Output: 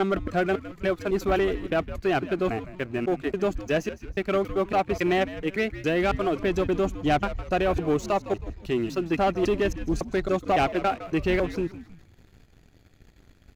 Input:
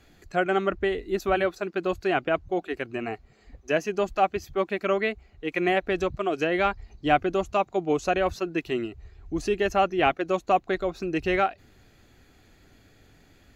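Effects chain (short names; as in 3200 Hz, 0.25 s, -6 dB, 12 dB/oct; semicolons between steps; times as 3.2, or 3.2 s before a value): slices in reverse order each 0.278 s, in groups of 3; low shelf 210 Hz +9.5 dB; sample leveller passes 2; frequency-shifting echo 0.159 s, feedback 39%, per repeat -93 Hz, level -14 dB; gain -7 dB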